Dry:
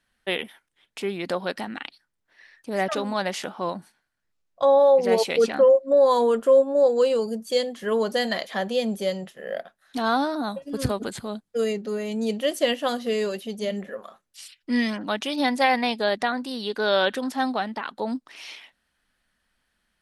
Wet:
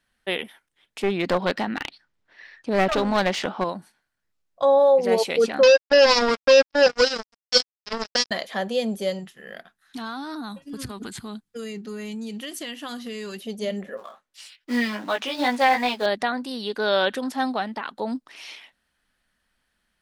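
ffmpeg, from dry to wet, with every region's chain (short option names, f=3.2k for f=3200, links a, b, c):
-filter_complex "[0:a]asettb=1/sr,asplit=3[a][b][c];[a]atrim=end=1.034[d];[b]atrim=start=1.03:end=3.64,asetpts=PTS-STARTPTS,afade=t=in:d=0.004:c=qsin,afade=t=out:st=2.606:d=0.004:c=qsin,acontrast=56,lowpass=5.1k,aeval=exprs='clip(val(0),-1,0.0708)':c=same[e];[c]atrim=start=3.636[f];[d][e]acrossfade=d=0.004:c1=hsin:c2=qsin[g];[g][f]acrossfade=d=0.004:c1=qsin:c2=hsin,asettb=1/sr,asplit=3[h][i][j];[h]atrim=end=5.634[k];[i]atrim=start=5.63:end=8.31,asetpts=PTS-STARTPTS,afade=t=in:d=0.004:c=qsin,afade=t=out:st=2.676:d=0.004:c=qsin,acrusher=bits=2:mix=0:aa=0.5,lowpass=f=5.2k:t=q:w=8.8[l];[j]atrim=start=8.306[m];[k][l]acrossfade=d=0.004:c1=hsin:c2=qsin[n];[n][m]acrossfade=d=0.004:c1=qsin:c2=hsin,asettb=1/sr,asplit=3[o][p][q];[o]atrim=end=9.194[r];[p]atrim=start=9.19:end=13.4,asetpts=PTS-STARTPTS,afade=t=in:d=0.004:c=qsin,afade=t=out:st=4.206:d=0.004:c=qsin,equalizer=f=570:t=o:w=0.72:g=-15,acompressor=threshold=-29dB:ratio=10:attack=3.2:release=140:knee=1:detection=peak[s];[q]atrim=start=13.396[t];[r][s]acrossfade=d=0.004:c1=hsin:c2=qsin[u];[u][t]acrossfade=d=0.004:c1=qsin:c2=hsin,asettb=1/sr,asplit=3[v][w][x];[v]atrim=end=13.974[y];[w]atrim=start=13.97:end=16.06,asetpts=PTS-STARTPTS,afade=t=in:d=0.004:c=qsin,afade=t=out:st=2.086:d=0.004:c=qsin,acrusher=bits=4:mode=log:mix=0:aa=0.000001,flanger=delay=16:depth=3.4:speed=2.6,asplit=2[z][aa];[aa]highpass=f=720:p=1,volume=12dB,asoftclip=type=tanh:threshold=-7.5dB[ab];[z][ab]amix=inputs=2:normalize=0,lowpass=f=2.9k:p=1,volume=-6dB[ac];[x]atrim=start=16.056[ad];[y][ac]acrossfade=d=0.004:c1=hsin:c2=qsin[ae];[ae][ad]acrossfade=d=0.004:c1=qsin:c2=hsin"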